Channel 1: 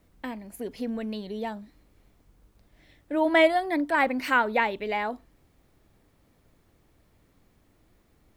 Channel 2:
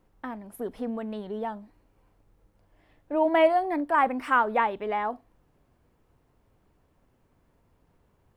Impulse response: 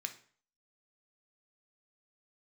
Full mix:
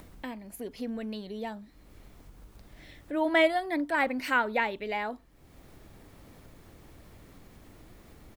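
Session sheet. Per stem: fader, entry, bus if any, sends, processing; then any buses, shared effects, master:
−2.0 dB, 0.00 s, no send, no processing
−15.5 dB, 0.4 ms, polarity flipped, no send, no processing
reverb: not used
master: upward compression, threshold −39 dBFS

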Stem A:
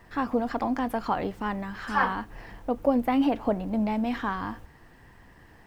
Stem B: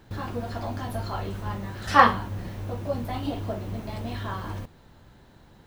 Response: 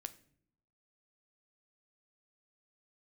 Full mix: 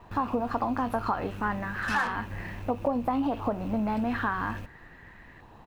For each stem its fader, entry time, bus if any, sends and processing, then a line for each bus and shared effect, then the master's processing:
0.0 dB, 0.00 s, no send, auto-filter low-pass saw up 0.37 Hz 970–2,300 Hz
−3.0 dB, 3.1 ms, polarity flipped, no send, parametric band 2,600 Hz +13 dB 0.25 octaves; tube saturation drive 22 dB, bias 0.6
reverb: not used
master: downward compressor 6 to 1, threshold −24 dBFS, peak gain reduction 10.5 dB

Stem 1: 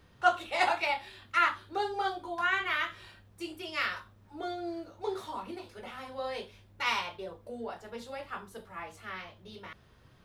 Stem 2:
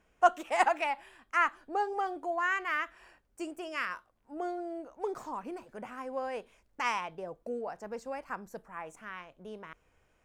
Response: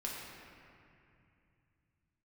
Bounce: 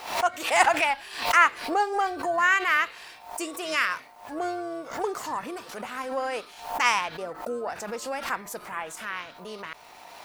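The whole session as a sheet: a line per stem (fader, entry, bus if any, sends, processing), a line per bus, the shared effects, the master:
−17.0 dB, 0.00 s, no send, ring modulation 810 Hz; envelope flattener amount 70%; automatic ducking −11 dB, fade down 0.25 s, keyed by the second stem
−2.5 dB, 0.00 s, no send, no processing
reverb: not used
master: automatic gain control gain up to 10 dB; spectral tilt +2.5 dB per octave; background raised ahead of every attack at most 96 dB per second

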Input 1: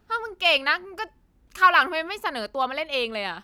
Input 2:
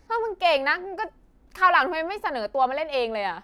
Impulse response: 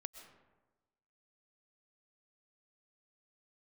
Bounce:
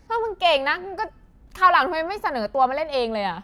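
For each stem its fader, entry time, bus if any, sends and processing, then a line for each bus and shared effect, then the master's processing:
−11.0 dB, 0.00 s, send −9.5 dB, low shelf with overshoot 310 Hz +13.5 dB, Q 1.5
+2.0 dB, 0.00 s, no send, no processing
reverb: on, RT60 1.2 s, pre-delay 85 ms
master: no processing

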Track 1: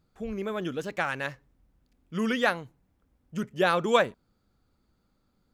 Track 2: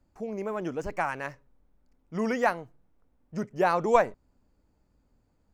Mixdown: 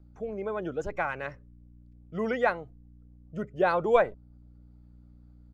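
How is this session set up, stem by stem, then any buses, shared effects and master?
−4.5 dB, 0.00 s, no send, high-shelf EQ 5,400 Hz −10 dB; automatic ducking −7 dB, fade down 0.35 s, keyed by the second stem
−0.5 dB, 2.5 ms, no send, notch filter 960 Hz, Q 7.8; gate on every frequency bin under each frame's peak −30 dB strong; mains hum 60 Hz, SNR 21 dB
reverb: not used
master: no processing

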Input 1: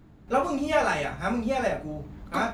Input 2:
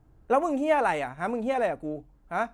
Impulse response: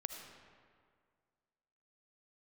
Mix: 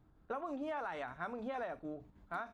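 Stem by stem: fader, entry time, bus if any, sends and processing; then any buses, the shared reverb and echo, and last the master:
−18.0 dB, 0.00 s, no send, downward compressor 1.5 to 1, threshold −35 dBFS, peak gain reduction 6.5 dB; square-wave tremolo 6.5 Hz, depth 60%, duty 65%
−2.5 dB, 0.6 ms, no send, brickwall limiter −18 dBFS, peak gain reduction 6 dB; Chebyshev low-pass with heavy ripple 4,900 Hz, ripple 9 dB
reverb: not used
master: downward compressor, threshold −37 dBFS, peak gain reduction 7.5 dB

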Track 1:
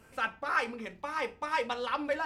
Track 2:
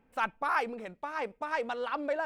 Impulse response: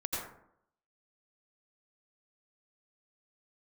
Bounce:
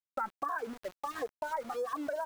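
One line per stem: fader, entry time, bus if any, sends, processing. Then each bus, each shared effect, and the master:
−6.0 dB, 0.00 s, send −20.5 dB, transient designer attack −1 dB, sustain +3 dB; soft clipping −26 dBFS, distortion −15 dB; automatic ducking −16 dB, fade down 1.45 s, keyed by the second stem
−3.0 dB, 3.1 ms, no send, rippled gain that drifts along the octave scale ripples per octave 1.6, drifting −1.4 Hz, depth 23 dB; reverb reduction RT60 1.2 s; Butterworth low-pass 2,100 Hz 72 dB per octave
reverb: on, RT60 0.70 s, pre-delay 78 ms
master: low-pass filter 1,700 Hz 24 dB per octave; centre clipping without the shift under −41.5 dBFS; downward compressor, threshold −32 dBFS, peak gain reduction 10.5 dB

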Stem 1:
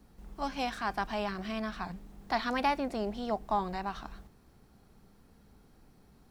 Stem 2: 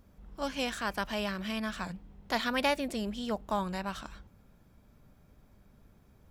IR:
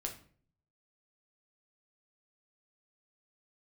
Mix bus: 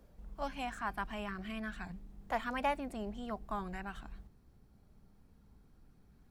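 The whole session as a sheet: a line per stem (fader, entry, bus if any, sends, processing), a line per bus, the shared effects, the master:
−10.5 dB, 0.00 s, no send, low-shelf EQ 230 Hz +10.5 dB
−3.0 dB, 0.00 s, no send, reverb reduction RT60 1.5 s; auto-filter high-pass saw up 0.45 Hz 450–2,100 Hz; automatic ducking −9 dB, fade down 0.45 s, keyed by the first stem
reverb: not used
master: no processing

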